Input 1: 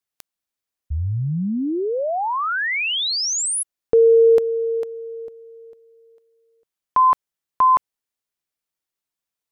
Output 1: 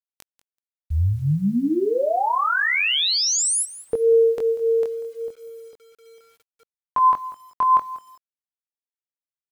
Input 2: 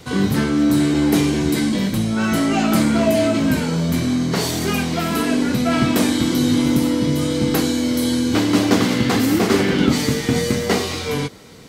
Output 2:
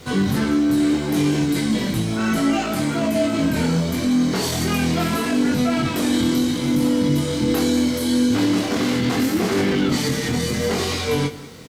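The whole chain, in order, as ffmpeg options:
ffmpeg -i in.wav -filter_complex "[0:a]alimiter=limit=-14.5dB:level=0:latency=1:release=27,flanger=delay=20:depth=4.6:speed=0.72,aresample=32000,aresample=44100,asplit=2[link_01][link_02];[link_02]aecho=0:1:191|382:0.141|0.024[link_03];[link_01][link_03]amix=inputs=2:normalize=0,acrusher=bits=9:mix=0:aa=0.000001,volume=4.5dB" out.wav

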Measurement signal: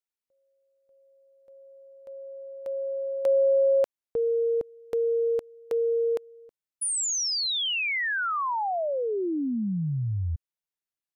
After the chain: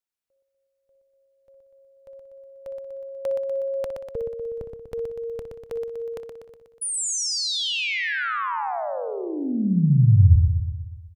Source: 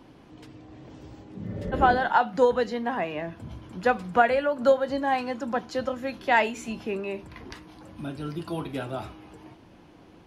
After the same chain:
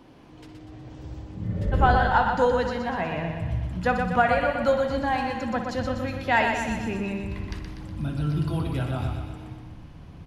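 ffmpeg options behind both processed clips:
ffmpeg -i in.wav -filter_complex "[0:a]asplit=2[link_01][link_02];[link_02]aecho=0:1:122|244|366|488|610|732|854:0.501|0.286|0.163|0.0928|0.0529|0.0302|0.0172[link_03];[link_01][link_03]amix=inputs=2:normalize=0,asubboost=boost=7.5:cutoff=130,asplit=2[link_04][link_05];[link_05]adelay=61,lowpass=frequency=4400:poles=1,volume=-9.5dB,asplit=2[link_06][link_07];[link_07]adelay=61,lowpass=frequency=4400:poles=1,volume=0.16[link_08];[link_06][link_08]amix=inputs=2:normalize=0[link_09];[link_04][link_09]amix=inputs=2:normalize=0" out.wav

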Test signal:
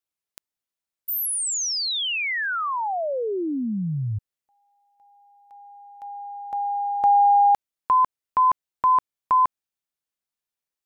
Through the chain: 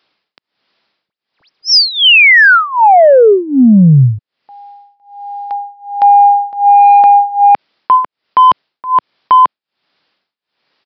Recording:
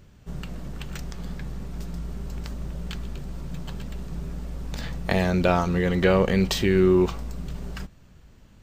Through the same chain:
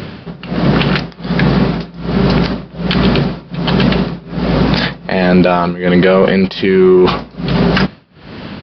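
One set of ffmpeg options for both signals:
ffmpeg -i in.wav -af "highpass=170,areverse,acompressor=threshold=-26dB:ratio=10:attack=8.7:release=65:knee=1:detection=rms,areverse,tremolo=f=1.3:d=0.96,asoftclip=type=tanh:threshold=-23dB,aresample=11025,aresample=44100,alimiter=level_in=33.5dB:limit=-1dB:release=50:level=0:latency=1,volume=-1dB" out.wav

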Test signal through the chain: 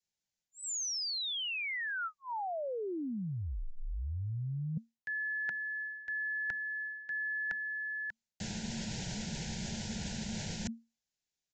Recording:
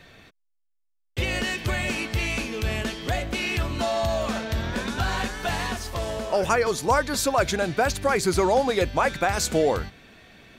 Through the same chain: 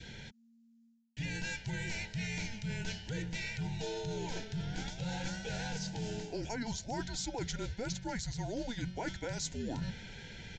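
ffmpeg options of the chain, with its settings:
ffmpeg -i in.wav -af "asuperstop=centerf=1400:order=8:qfactor=3.2,bass=frequency=250:gain=6,treble=frequency=4000:gain=8,afreqshift=-230,aresample=16000,aresample=44100,adynamicequalizer=threshold=0.0126:dfrequency=1100:dqfactor=1.6:tfrequency=1100:tqfactor=1.6:attack=5:release=100:ratio=0.375:range=2.5:mode=boostabove:tftype=bell,areverse,acompressor=threshold=-36dB:ratio=8,areverse" out.wav

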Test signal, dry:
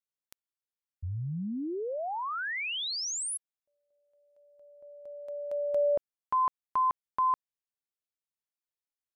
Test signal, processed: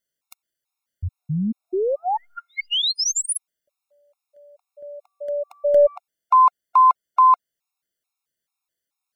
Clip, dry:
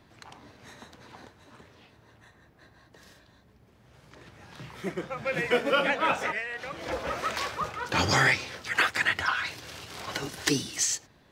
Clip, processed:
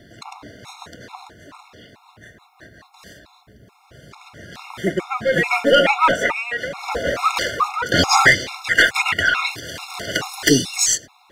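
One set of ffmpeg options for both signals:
ffmpeg -i in.wav -af "lowshelf=frequency=150:gain=-4,aeval=exprs='0.376*(cos(1*acos(clip(val(0)/0.376,-1,1)))-cos(1*PI/2))+0.168*(cos(5*acos(clip(val(0)/0.376,-1,1)))-cos(5*PI/2))+0.0596*(cos(7*acos(clip(val(0)/0.376,-1,1)))-cos(7*PI/2))+0.00841*(cos(8*acos(clip(val(0)/0.376,-1,1)))-cos(8*PI/2))':channel_layout=same,afftfilt=real='re*gt(sin(2*PI*2.3*pts/sr)*(1-2*mod(floor(b*sr/1024/710),2)),0)':imag='im*gt(sin(2*PI*2.3*pts/sr)*(1-2*mod(floor(b*sr/1024/710),2)),0)':win_size=1024:overlap=0.75,volume=7dB" out.wav

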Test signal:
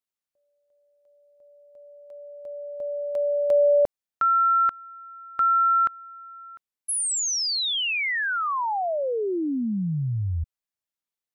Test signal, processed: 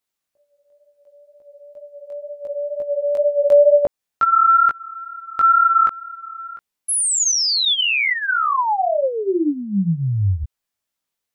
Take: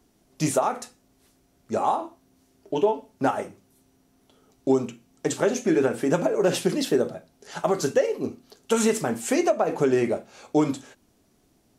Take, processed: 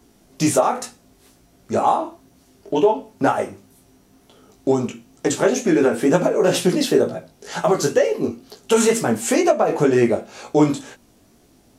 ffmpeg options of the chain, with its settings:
ffmpeg -i in.wav -filter_complex "[0:a]asplit=2[link_01][link_02];[link_02]acompressor=threshold=-31dB:ratio=6:attack=1.1:release=305:detection=peak,volume=-2.5dB[link_03];[link_01][link_03]amix=inputs=2:normalize=0,flanger=delay=16.5:depth=4.4:speed=2.1,volume=7.5dB" out.wav

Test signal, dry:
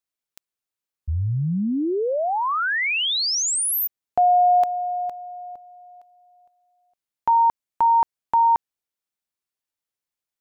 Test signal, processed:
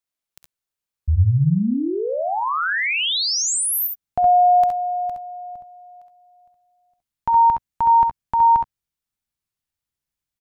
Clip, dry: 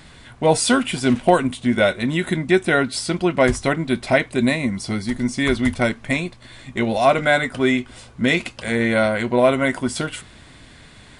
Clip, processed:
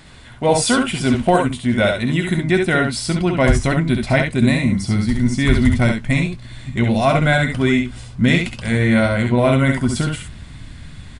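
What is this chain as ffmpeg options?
ffmpeg -i in.wav -af "aecho=1:1:53|67|80:0.141|0.562|0.141,asubboost=boost=4.5:cutoff=190" out.wav

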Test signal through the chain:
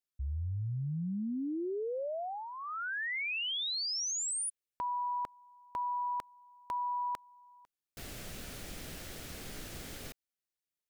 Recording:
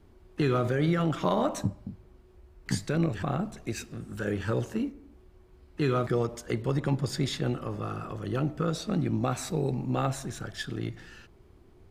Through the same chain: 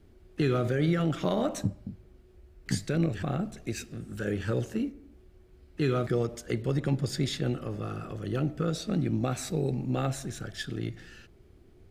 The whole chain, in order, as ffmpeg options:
ffmpeg -i in.wav -af "equalizer=frequency=990:width=2.3:gain=-9" out.wav

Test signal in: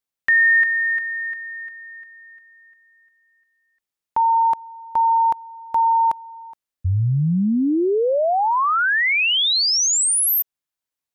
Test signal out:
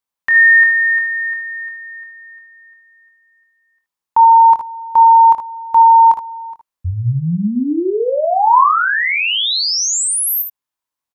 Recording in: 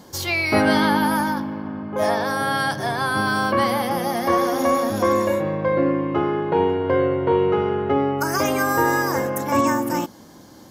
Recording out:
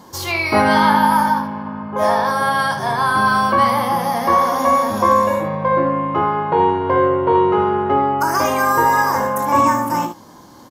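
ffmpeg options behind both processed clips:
ffmpeg -i in.wav -filter_complex "[0:a]equalizer=frequency=1000:width_type=o:width=0.54:gain=9.5,asplit=2[link_01][link_02];[link_02]aecho=0:1:24|59|76:0.376|0.316|0.316[link_03];[link_01][link_03]amix=inputs=2:normalize=0" out.wav

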